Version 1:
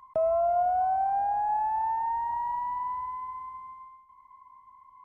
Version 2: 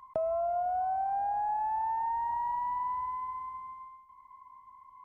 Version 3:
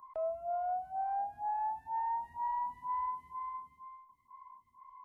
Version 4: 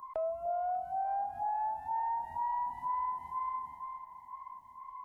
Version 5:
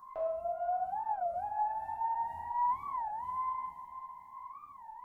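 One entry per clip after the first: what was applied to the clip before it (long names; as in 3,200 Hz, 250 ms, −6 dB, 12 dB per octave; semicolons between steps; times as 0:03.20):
downward compressor, threshold −29 dBFS, peak gain reduction 6.5 dB
brickwall limiter −29 dBFS, peak gain reduction 8 dB; phaser with staggered stages 2.1 Hz
downward compressor 2.5 to 1, threshold −42 dBFS, peak gain reduction 7 dB; delay that swaps between a low-pass and a high-pass 297 ms, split 960 Hz, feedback 72%, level −12 dB; level +7 dB
reverb whose tail is shaped and stops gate 270 ms falling, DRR −7 dB; wow of a warped record 33 1/3 rpm, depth 250 cents; level −7 dB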